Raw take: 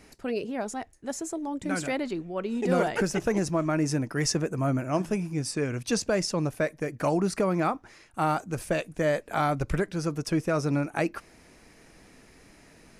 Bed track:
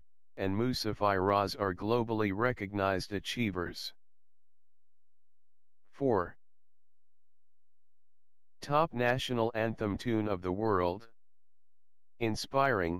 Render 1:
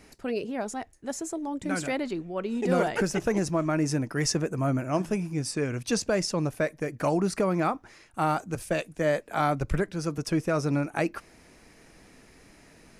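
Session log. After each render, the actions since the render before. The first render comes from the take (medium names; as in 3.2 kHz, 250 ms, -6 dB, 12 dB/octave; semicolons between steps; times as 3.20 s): 8.55–10.18 s: three bands expanded up and down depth 40%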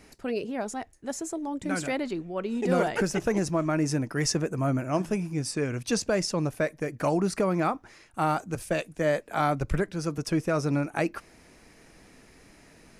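no audible change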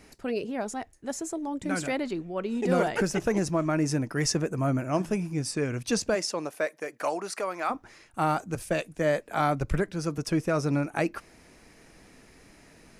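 6.14–7.69 s: high-pass 340 Hz -> 730 Hz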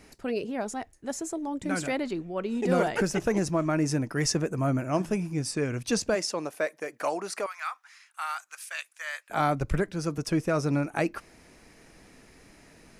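7.46–9.30 s: high-pass 1.2 kHz 24 dB/octave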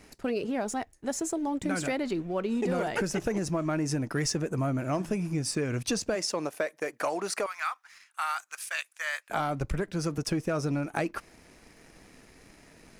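waveshaping leveller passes 1; compression, threshold -26 dBFS, peak gain reduction 8.5 dB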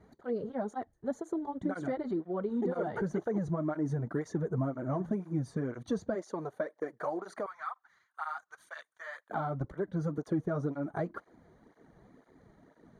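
boxcar filter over 17 samples; cancelling through-zero flanger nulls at 2 Hz, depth 4.1 ms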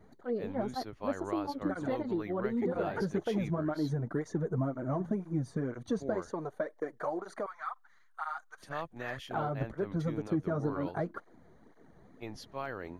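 add bed track -11 dB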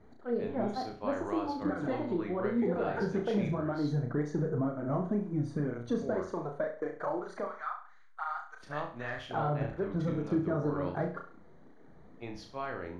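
distance through air 73 m; on a send: flutter echo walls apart 5.8 m, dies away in 0.41 s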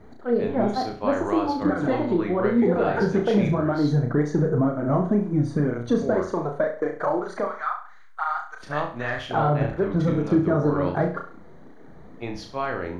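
trim +10 dB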